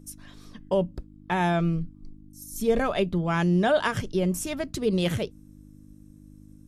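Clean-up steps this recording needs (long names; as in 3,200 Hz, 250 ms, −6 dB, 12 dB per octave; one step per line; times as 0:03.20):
hum removal 50.8 Hz, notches 6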